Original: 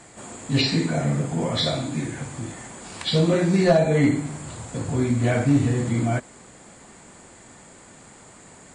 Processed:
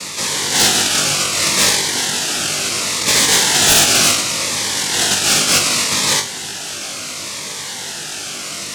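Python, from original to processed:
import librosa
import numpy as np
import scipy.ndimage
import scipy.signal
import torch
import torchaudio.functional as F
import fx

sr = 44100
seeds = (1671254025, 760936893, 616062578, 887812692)

p1 = fx.highpass(x, sr, hz=580.0, slope=6)
p2 = fx.over_compress(p1, sr, threshold_db=-42.0, ratio=-1.0)
p3 = p1 + (p2 * librosa.db_to_amplitude(-1.5))
p4 = fx.noise_vocoder(p3, sr, seeds[0], bands=1)
p5 = fx.fold_sine(p4, sr, drive_db=9, ceiling_db=-7.5)
p6 = p5 + fx.room_flutter(p5, sr, wall_m=3.5, rt60_s=0.23, dry=0)
y = fx.notch_cascade(p6, sr, direction='falling', hz=0.69)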